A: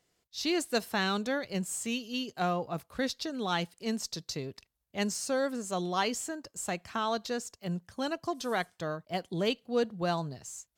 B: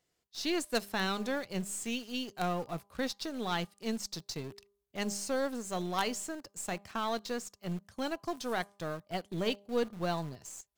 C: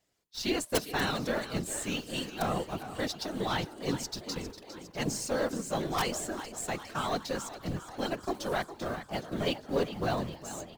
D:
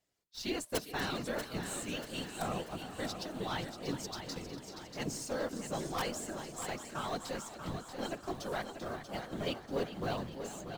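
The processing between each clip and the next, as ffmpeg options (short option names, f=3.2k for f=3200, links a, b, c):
-filter_complex "[0:a]bandreject=f=201.3:t=h:w=4,bandreject=f=402.6:t=h:w=4,bandreject=f=603.9:t=h:w=4,bandreject=f=805.2:t=h:w=4,bandreject=f=1.0065k:t=h:w=4,bandreject=f=1.2078k:t=h:w=4,asplit=2[a][b];[b]acrusher=bits=4:dc=4:mix=0:aa=0.000001,volume=-4.5dB[c];[a][c]amix=inputs=2:normalize=0,volume=-5dB"
-filter_complex "[0:a]asplit=7[a][b][c][d][e][f][g];[b]adelay=406,afreqshift=46,volume=-12.5dB[h];[c]adelay=812,afreqshift=92,volume=-17.2dB[i];[d]adelay=1218,afreqshift=138,volume=-22dB[j];[e]adelay=1624,afreqshift=184,volume=-26.7dB[k];[f]adelay=2030,afreqshift=230,volume=-31.4dB[l];[g]adelay=2436,afreqshift=276,volume=-36.2dB[m];[a][h][i][j][k][l][m]amix=inputs=7:normalize=0,aeval=exprs='(mod(7.5*val(0)+1,2)-1)/7.5':c=same,afftfilt=real='hypot(re,im)*cos(2*PI*random(0))':imag='hypot(re,im)*sin(2*PI*random(1))':win_size=512:overlap=0.75,volume=8dB"
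-af "aecho=1:1:637|1274|1911|2548|3185:0.376|0.177|0.083|0.039|0.0183,volume=-6dB"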